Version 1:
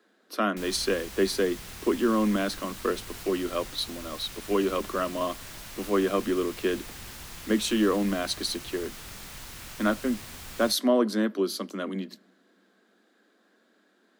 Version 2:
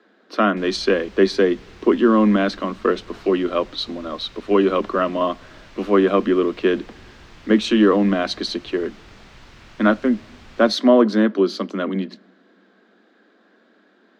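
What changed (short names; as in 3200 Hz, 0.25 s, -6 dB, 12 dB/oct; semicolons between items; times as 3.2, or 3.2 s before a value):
speech +9.5 dB; master: add air absorption 170 m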